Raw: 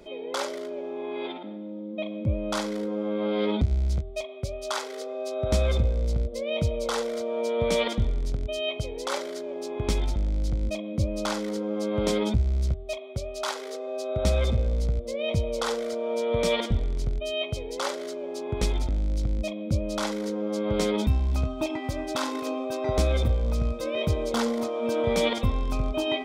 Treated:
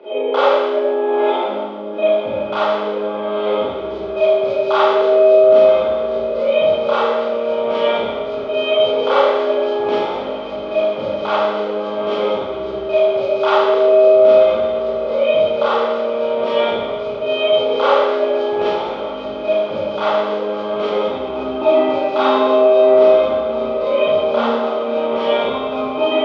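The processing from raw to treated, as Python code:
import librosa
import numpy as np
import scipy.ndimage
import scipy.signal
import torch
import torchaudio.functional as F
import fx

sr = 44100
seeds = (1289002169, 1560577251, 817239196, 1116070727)

y = fx.rider(x, sr, range_db=4, speed_s=0.5)
y = fx.cabinet(y, sr, low_hz=370.0, low_slope=12, high_hz=3200.0, hz=(400.0, 580.0, 830.0, 1200.0, 1900.0, 3000.0), db=(9, 5, 6, 5, -4, 4))
y = fx.echo_diffused(y, sr, ms=957, feedback_pct=78, wet_db=-14.5)
y = fx.rev_schroeder(y, sr, rt60_s=1.1, comb_ms=27, drr_db=-9.5)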